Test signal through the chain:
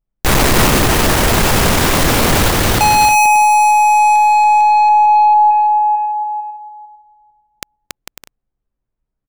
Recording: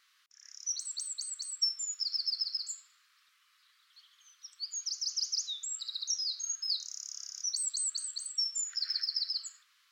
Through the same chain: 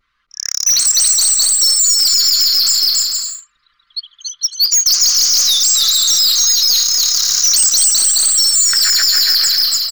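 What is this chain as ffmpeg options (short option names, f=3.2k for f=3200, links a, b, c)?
-filter_complex "[0:a]anlmdn=0.00251,adynamicequalizer=threshold=0.00447:dfrequency=1600:dqfactor=1.2:tfrequency=1600:tqfactor=1.2:attack=5:release=100:ratio=0.375:range=2:mode=cutabove:tftype=bell,acrossover=split=2300|4500[a][b][c];[a]acontrast=23[d];[d][b][c]amix=inputs=3:normalize=0,aeval=exprs='(tanh(141*val(0)+0.05)-tanh(0.05))/141':c=same,asplit=2[e][f];[f]acompressor=threshold=-58dB:ratio=6,volume=3dB[g];[e][g]amix=inputs=2:normalize=0,aecho=1:1:280|448|548.8|609.3|645.6:0.631|0.398|0.251|0.158|0.1,alimiter=level_in=35.5dB:limit=-1dB:release=50:level=0:latency=1,volume=-4dB"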